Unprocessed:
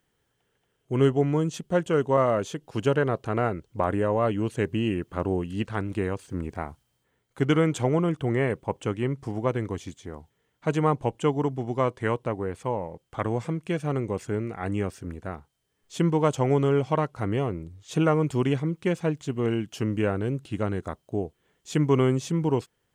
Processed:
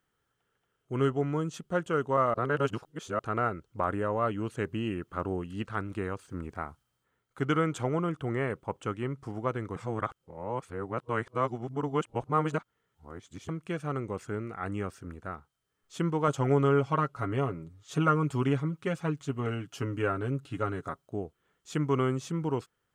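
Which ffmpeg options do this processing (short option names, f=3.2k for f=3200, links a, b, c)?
-filter_complex "[0:a]asettb=1/sr,asplit=3[a][b][c];[a]atrim=end=16.274[d];[b]atrim=start=16.27:end=21.06,asetpts=PTS-STARTPTS,afade=t=in:d=0.004:c=qsin,afade=t=out:st=4.786:d=0.004:c=qsin,aecho=1:1:7.2:0.65,atrim=end_sample=211239[e];[c]atrim=start=21.056[f];[d][e]acrossfade=d=0.004:c1=hsin:c2=qsin[g];[g][f]acrossfade=d=0.004:c1=qsin:c2=hsin,asplit=5[h][i][j][k][l];[h]atrim=end=2.342[m];[i]atrim=start=2.338:end=3.192,asetpts=PTS-STARTPTS,areverse[n];[j]atrim=start=3.188:end=9.762[o];[k]atrim=start=9.758:end=13.492,asetpts=PTS-STARTPTS,areverse[p];[l]atrim=start=13.488[q];[m][n]acrossfade=d=0.004:c1=hsin:c2=hsin[r];[r][o]acrossfade=d=0.004:c1=hsin:c2=hsin[s];[s][p]acrossfade=d=0.004:c1=hsin:c2=hsin[t];[t][q]acrossfade=d=0.004:c1=hsin:c2=hsin,equalizer=f=1.3k:w=3.1:g=10,volume=-6.5dB"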